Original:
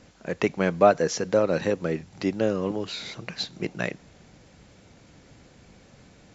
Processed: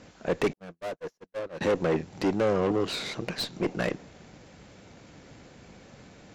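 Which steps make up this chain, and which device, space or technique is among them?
tube preamp driven hard (tube stage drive 31 dB, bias 0.65; low shelf 130 Hz -6 dB; high shelf 3500 Hz -4.5 dB); 0.53–1.61 gate -32 dBFS, range -55 dB; dynamic EQ 410 Hz, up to +5 dB, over -50 dBFS, Q 0.74; gain +7.5 dB

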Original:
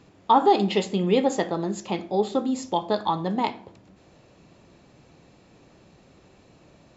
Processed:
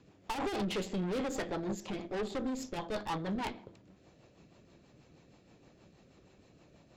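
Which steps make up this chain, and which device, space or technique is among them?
overdriven rotary cabinet (tube stage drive 30 dB, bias 0.8; rotary speaker horn 6.3 Hz)

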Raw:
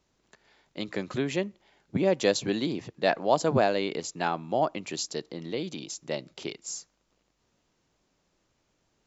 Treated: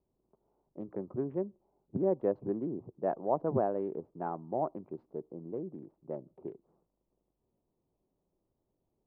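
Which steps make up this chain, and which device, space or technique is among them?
Wiener smoothing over 25 samples; 2.25–3.22 notch 3600 Hz, Q 5; under water (LPF 1100 Hz 24 dB/oct; bell 380 Hz +5 dB 0.21 oct); gain -6.5 dB

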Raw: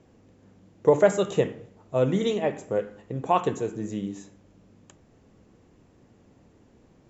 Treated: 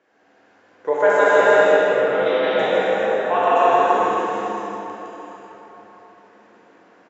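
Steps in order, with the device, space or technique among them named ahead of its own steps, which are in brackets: station announcement (BPF 490–4800 Hz; bell 1600 Hz +10.5 dB 0.58 oct; loudspeakers at several distances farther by 40 m -10 dB, 55 m -1 dB; reverb RT60 4.2 s, pre-delay 11 ms, DRR -4.5 dB); 1.99–2.59 elliptic low-pass 5100 Hz, stop band 40 dB; non-linear reverb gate 0.42 s flat, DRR -4 dB; gain -3 dB

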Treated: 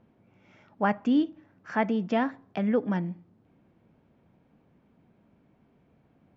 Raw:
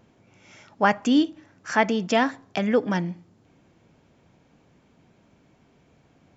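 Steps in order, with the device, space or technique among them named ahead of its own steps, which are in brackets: phone in a pocket (LPF 3800 Hz 12 dB/oct; bell 210 Hz +4 dB 0.52 oct; high shelf 2200 Hz -8.5 dB); gain -5 dB

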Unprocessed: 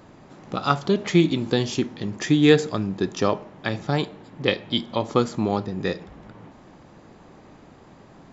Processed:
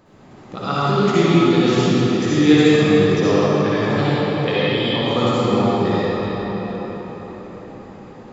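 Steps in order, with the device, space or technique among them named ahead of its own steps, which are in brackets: cathedral (reverb RT60 5.2 s, pre-delay 54 ms, DRR -11.5 dB); gain -5 dB

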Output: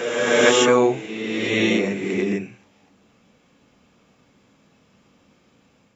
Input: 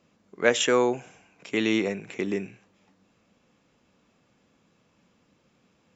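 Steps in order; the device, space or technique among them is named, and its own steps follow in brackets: reverse reverb (reverse; reverb RT60 1.9 s, pre-delay 10 ms, DRR -4 dB; reverse); gain +2 dB

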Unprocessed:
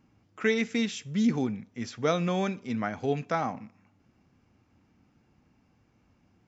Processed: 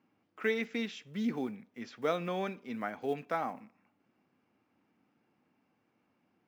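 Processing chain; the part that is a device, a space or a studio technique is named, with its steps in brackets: early digital voice recorder (BPF 250–3700 Hz; block floating point 7-bit); gain -4.5 dB

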